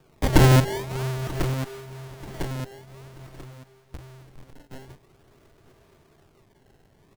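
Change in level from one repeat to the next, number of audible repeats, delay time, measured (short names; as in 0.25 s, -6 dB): -7.5 dB, 3, 0.935 s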